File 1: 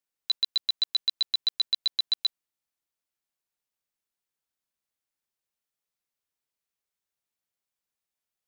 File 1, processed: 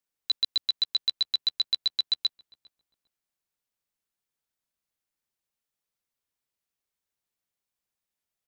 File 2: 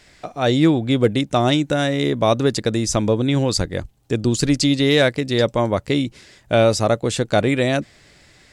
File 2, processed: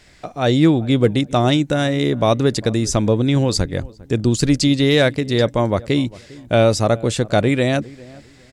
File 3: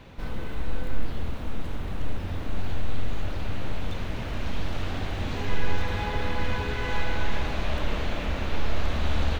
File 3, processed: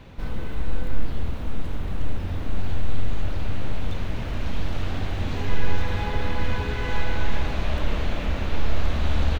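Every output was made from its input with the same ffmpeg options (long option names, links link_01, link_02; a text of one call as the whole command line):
ffmpeg -i in.wav -filter_complex "[0:a]lowshelf=frequency=230:gain=4,asplit=2[link_01][link_02];[link_02]adelay=402,lowpass=frequency=1300:poles=1,volume=-21dB,asplit=2[link_03][link_04];[link_04]adelay=402,lowpass=frequency=1300:poles=1,volume=0.27[link_05];[link_03][link_05]amix=inputs=2:normalize=0[link_06];[link_01][link_06]amix=inputs=2:normalize=0" out.wav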